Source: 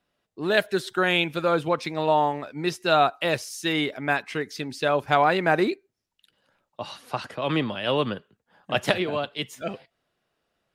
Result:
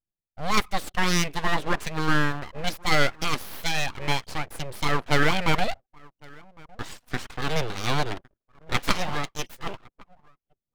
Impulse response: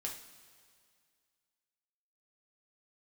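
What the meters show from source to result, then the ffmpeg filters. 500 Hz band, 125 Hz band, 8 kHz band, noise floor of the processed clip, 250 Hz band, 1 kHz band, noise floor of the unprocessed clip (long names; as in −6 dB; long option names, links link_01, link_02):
−7.5 dB, +3.5 dB, +6.5 dB, below −85 dBFS, −2.5 dB, −3.0 dB, −79 dBFS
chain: -filter_complex "[0:a]asplit=2[link_01][link_02];[link_02]adelay=1108,volume=-24dB,highshelf=frequency=4000:gain=-24.9[link_03];[link_01][link_03]amix=inputs=2:normalize=0,anlmdn=0.0158,aeval=exprs='abs(val(0))':channel_layout=same,volume=1.5dB"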